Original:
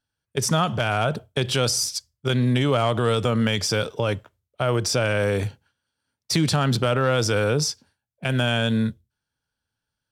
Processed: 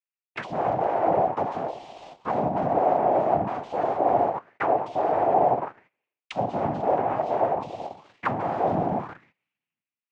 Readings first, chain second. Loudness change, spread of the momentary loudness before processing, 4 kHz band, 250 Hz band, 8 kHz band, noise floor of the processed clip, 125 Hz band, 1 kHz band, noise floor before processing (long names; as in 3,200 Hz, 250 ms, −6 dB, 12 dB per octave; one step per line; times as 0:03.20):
−2.0 dB, 7 LU, below −20 dB, −6.5 dB, below −30 dB, below −85 dBFS, −14.0 dB, +6.5 dB, −84 dBFS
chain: adaptive Wiener filter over 15 samples
flanger 0.36 Hz, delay 5.5 ms, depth 1.5 ms, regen −52%
coupled-rooms reverb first 0.64 s, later 1.6 s, from −19 dB, DRR −1 dB
in parallel at −11 dB: fuzz pedal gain 39 dB, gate −42 dBFS
on the sum: spectral tilt +4 dB per octave
cochlear-implant simulation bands 4
reversed playback
downward compressor 8 to 1, threshold −26 dBFS, peak gain reduction 17.5 dB
reversed playback
noise gate −58 dBFS, range −17 dB
leveller curve on the samples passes 1
envelope-controlled low-pass 720–2,700 Hz down, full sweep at −24 dBFS